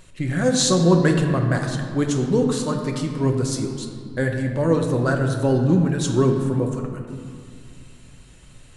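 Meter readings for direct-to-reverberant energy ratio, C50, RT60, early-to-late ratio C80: 2.0 dB, 5.0 dB, 2.2 s, 6.5 dB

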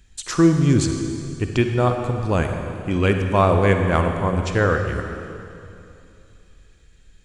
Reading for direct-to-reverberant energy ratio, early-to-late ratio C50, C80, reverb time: 4.5 dB, 5.0 dB, 6.0 dB, 2.7 s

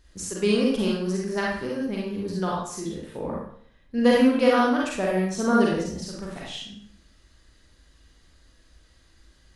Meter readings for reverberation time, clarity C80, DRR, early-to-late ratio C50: 0.60 s, 5.0 dB, -4.0 dB, 0.0 dB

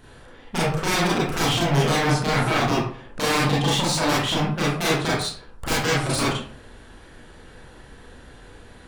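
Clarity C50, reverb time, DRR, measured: 1.0 dB, 0.50 s, -6.0 dB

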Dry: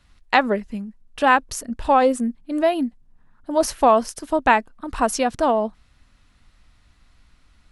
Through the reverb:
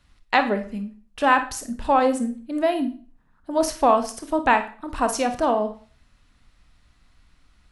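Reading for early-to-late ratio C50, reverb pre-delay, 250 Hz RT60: 11.0 dB, 27 ms, 0.40 s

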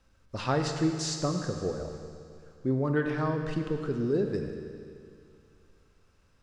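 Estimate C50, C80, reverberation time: 5.0 dB, 6.0 dB, 2.4 s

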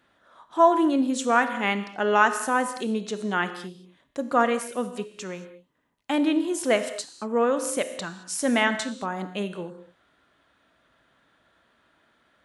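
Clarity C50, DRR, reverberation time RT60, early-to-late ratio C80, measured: 11.0 dB, 9.5 dB, no single decay rate, 12.5 dB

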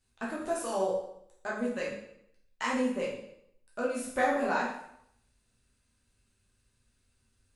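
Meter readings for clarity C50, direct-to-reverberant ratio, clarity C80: 3.0 dB, -5.5 dB, 6.5 dB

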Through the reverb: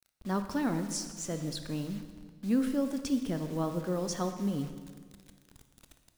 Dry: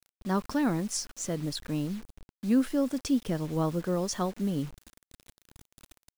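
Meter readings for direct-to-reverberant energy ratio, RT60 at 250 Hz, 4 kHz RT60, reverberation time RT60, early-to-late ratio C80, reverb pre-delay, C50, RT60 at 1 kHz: 7.5 dB, 1.9 s, 1.4 s, 1.7 s, 10.5 dB, 20 ms, 9.0 dB, 1.6 s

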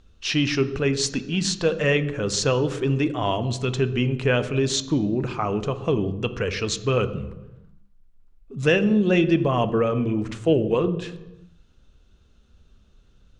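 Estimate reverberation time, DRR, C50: 1.1 s, 11.0 dB, 14.0 dB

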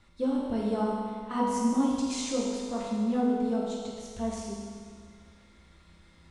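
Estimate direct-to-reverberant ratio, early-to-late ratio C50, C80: -5.5 dB, -1.0 dB, 1.0 dB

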